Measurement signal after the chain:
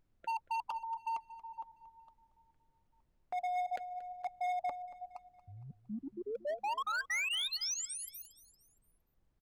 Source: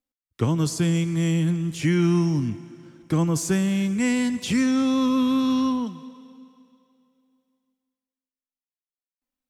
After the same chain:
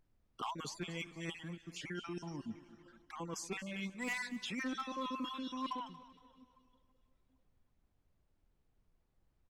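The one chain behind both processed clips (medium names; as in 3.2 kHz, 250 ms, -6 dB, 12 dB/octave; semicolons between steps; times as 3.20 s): random holes in the spectrogram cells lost 33%; reverb removal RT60 1.7 s; reverse; compression 8:1, threshold -30 dBFS; reverse; flange 1.9 Hz, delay 3.1 ms, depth 2.7 ms, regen +56%; band-pass filter 1.5 kHz, Q 0.5; hard clipper -37.5 dBFS; added noise brown -78 dBFS; on a send: feedback delay 231 ms, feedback 45%, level -17 dB; on the sum: trim +4.5 dB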